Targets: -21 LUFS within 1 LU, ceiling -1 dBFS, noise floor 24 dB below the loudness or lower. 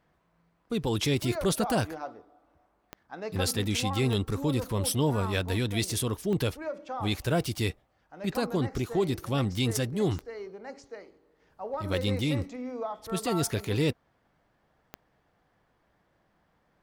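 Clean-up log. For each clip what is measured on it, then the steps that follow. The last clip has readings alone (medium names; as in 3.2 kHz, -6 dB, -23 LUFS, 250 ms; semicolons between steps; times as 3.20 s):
clicks found 5; loudness -29.5 LUFS; peak level -14.5 dBFS; loudness target -21.0 LUFS
-> de-click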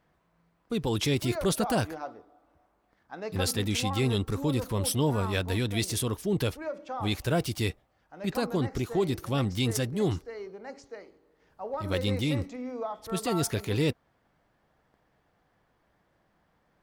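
clicks found 0; loudness -29.5 LUFS; peak level -14.5 dBFS; loudness target -21.0 LUFS
-> trim +8.5 dB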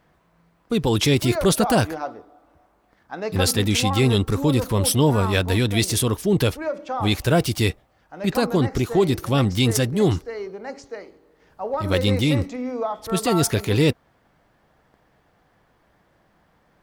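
loudness -21.0 LUFS; peak level -6.0 dBFS; noise floor -63 dBFS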